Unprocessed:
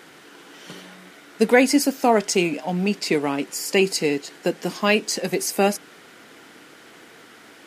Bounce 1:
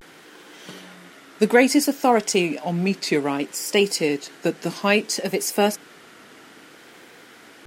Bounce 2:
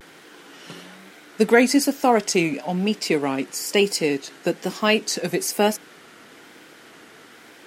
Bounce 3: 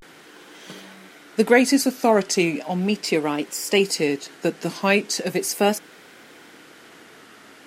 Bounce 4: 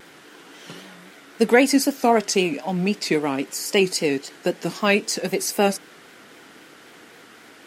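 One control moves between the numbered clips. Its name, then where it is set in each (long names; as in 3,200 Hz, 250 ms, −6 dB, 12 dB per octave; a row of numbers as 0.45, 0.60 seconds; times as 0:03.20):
pitch vibrato, speed: 0.6, 1.1, 0.37, 3.8 Hertz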